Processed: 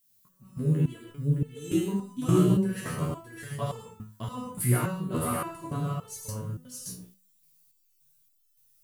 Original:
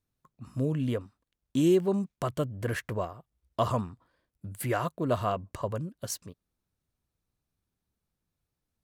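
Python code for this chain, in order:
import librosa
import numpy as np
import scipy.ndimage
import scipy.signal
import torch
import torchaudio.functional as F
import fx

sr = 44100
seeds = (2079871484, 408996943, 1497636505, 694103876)

p1 = fx.graphic_eq_15(x, sr, hz=(160, 630, 10000), db=(11, -8, 10))
p2 = fx.backlash(p1, sr, play_db=-40.0)
p3 = p1 + F.gain(torch.from_numpy(p2), -3.0).numpy()
p4 = fx.dmg_noise_colour(p3, sr, seeds[0], colour='violet', level_db=-61.0)
p5 = p4 + fx.echo_single(p4, sr, ms=615, db=-3.5, dry=0)
p6 = fx.rev_gated(p5, sr, seeds[1], gate_ms=180, shape='flat', drr_db=-2.0)
y = fx.resonator_held(p6, sr, hz=3.5, low_hz=61.0, high_hz=440.0)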